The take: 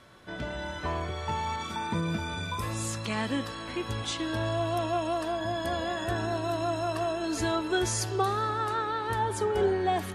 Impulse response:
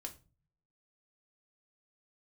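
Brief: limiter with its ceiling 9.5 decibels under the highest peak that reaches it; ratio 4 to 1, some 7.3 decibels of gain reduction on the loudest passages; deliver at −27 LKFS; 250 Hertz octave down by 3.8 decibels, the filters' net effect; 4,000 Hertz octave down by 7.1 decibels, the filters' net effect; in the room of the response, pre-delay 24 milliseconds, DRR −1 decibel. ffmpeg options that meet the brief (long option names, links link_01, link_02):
-filter_complex "[0:a]equalizer=frequency=250:width_type=o:gain=-6,equalizer=frequency=4000:width_type=o:gain=-9,acompressor=threshold=-32dB:ratio=4,alimiter=level_in=7.5dB:limit=-24dB:level=0:latency=1,volume=-7.5dB,asplit=2[link_01][link_02];[1:a]atrim=start_sample=2205,adelay=24[link_03];[link_02][link_03]afir=irnorm=-1:irlink=0,volume=4.5dB[link_04];[link_01][link_04]amix=inputs=2:normalize=0,volume=9dB"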